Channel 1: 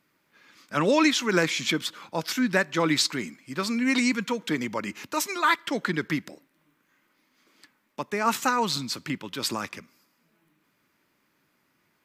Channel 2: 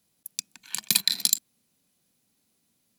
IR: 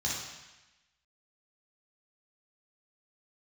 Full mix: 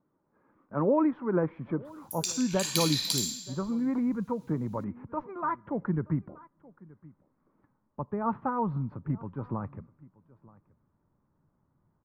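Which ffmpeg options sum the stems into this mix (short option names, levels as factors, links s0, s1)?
-filter_complex "[0:a]lowpass=f=1000:w=0.5412,lowpass=f=1000:w=1.3066,asubboost=boost=7.5:cutoff=110,volume=0.891,asplit=3[s0][s1][s2];[s1]volume=0.075[s3];[1:a]acompressor=threshold=0.0398:ratio=6,adelay=1850,volume=1.19,asplit=2[s4][s5];[s5]volume=0.596[s6];[s2]apad=whole_len=213438[s7];[s4][s7]sidechaincompress=threshold=0.0355:ratio=8:attack=16:release=145[s8];[2:a]atrim=start_sample=2205[s9];[s6][s9]afir=irnorm=-1:irlink=0[s10];[s3]aecho=0:1:926:1[s11];[s0][s8][s10][s11]amix=inputs=4:normalize=0,equalizer=f=680:t=o:w=0.29:g=-3"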